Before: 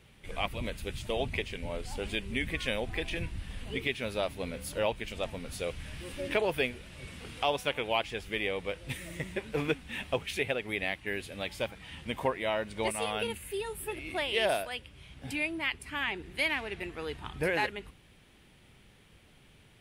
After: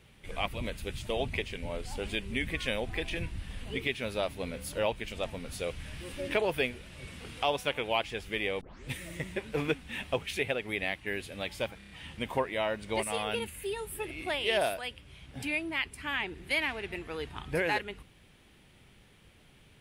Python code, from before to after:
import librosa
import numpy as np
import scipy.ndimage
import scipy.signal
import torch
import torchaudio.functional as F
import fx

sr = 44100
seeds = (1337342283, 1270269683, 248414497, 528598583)

y = fx.edit(x, sr, fx.tape_start(start_s=8.61, length_s=0.28),
    fx.stutter(start_s=11.78, slice_s=0.03, count=5), tone=tone)